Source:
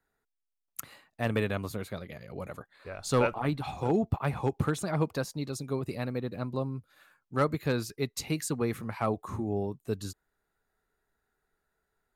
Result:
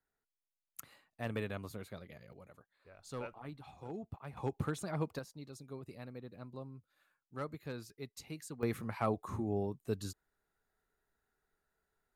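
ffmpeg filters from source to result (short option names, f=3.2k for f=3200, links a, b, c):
-af "asetnsamples=n=441:p=0,asendcmd='2.33 volume volume -17.5dB;4.37 volume volume -8dB;5.19 volume volume -14.5dB;8.63 volume volume -4dB',volume=-9.5dB"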